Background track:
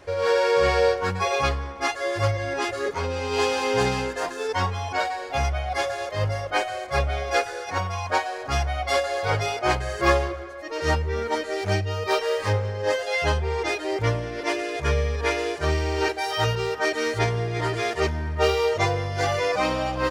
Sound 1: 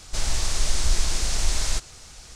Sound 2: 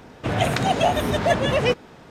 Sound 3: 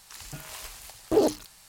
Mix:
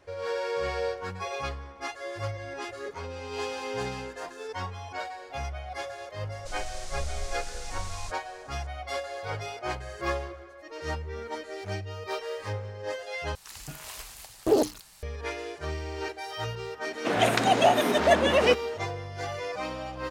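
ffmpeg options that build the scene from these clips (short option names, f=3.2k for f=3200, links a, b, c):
-filter_complex "[0:a]volume=-10.5dB[a];[2:a]highpass=f=220:w=0.5412,highpass=f=220:w=1.3066[b];[a]asplit=2[c][d];[c]atrim=end=13.354[e];[3:a]atrim=end=1.68,asetpts=PTS-STARTPTS,volume=-0.5dB[f];[d]atrim=start=15.026[g];[1:a]atrim=end=2.35,asetpts=PTS-STARTPTS,volume=-14.5dB,afade=t=in:d=0.004:c=hsin,afade=t=out:st=2.346:d=0.004:c=hsin,adelay=6320[h];[b]atrim=end=2.1,asetpts=PTS-STARTPTS,volume=-0.5dB,afade=t=in:d=0.004:c=hsin,afade=t=out:st=2.096:d=0.004:c=hsin,adelay=16810[i];[e][f]acrossfade=d=0.004:c1=hsin:c2=hsin[j];[j][g]acrossfade=d=0.004:c1=hsin:c2=hsin[k];[k][h][i]amix=inputs=3:normalize=0"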